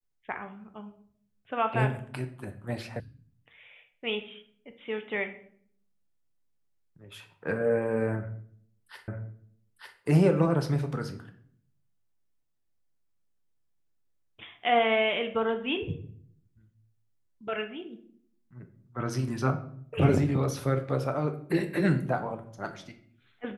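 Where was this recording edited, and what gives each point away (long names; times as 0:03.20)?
0:03.00: cut off before it has died away
0:09.08: the same again, the last 0.9 s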